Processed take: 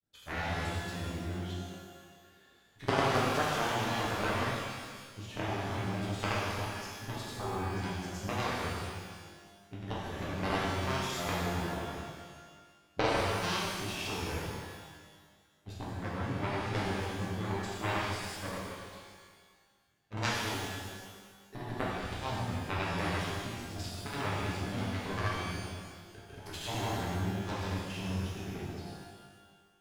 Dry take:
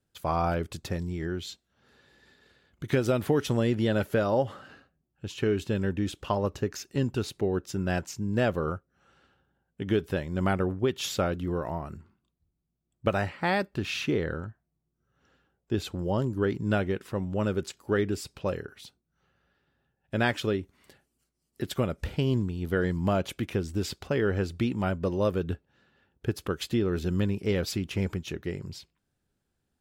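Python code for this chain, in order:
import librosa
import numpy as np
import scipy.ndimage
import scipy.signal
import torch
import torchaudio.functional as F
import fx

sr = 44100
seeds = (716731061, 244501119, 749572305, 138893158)

y = fx.cheby_harmonics(x, sr, harmonics=(3, 6), levels_db=(-7, -26), full_scale_db=-12.0)
y = fx.granulator(y, sr, seeds[0], grain_ms=100.0, per_s=20.0, spray_ms=100.0, spread_st=0)
y = fx.rev_shimmer(y, sr, seeds[1], rt60_s=1.6, semitones=12, shimmer_db=-8, drr_db=-6.5)
y = y * librosa.db_to_amplitude(-1.5)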